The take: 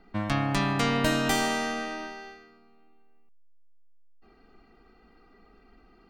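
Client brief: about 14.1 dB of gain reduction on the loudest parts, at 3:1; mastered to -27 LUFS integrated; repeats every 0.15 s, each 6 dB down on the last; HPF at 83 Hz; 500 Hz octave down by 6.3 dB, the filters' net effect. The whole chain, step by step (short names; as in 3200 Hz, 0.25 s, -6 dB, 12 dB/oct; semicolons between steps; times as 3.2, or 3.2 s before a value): HPF 83 Hz; bell 500 Hz -8.5 dB; compressor 3:1, threshold -43 dBFS; feedback echo 0.15 s, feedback 50%, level -6 dB; gain +14 dB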